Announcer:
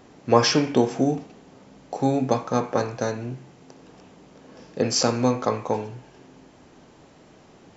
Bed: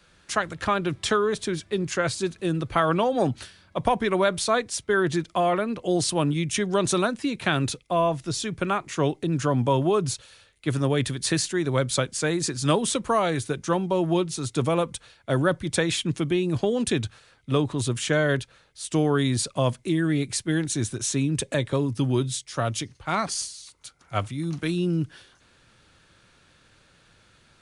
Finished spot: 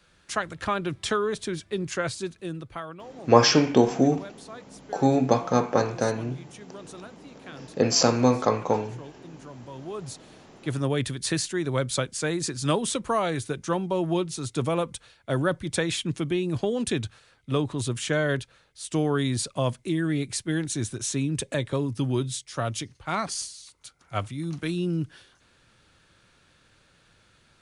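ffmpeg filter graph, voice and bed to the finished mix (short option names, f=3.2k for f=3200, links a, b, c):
-filter_complex "[0:a]adelay=3000,volume=1dB[a];[1:a]volume=15dB,afade=t=out:st=1.98:d=0.98:silence=0.133352,afade=t=in:st=9.73:d=1.13:silence=0.125893[b];[a][b]amix=inputs=2:normalize=0"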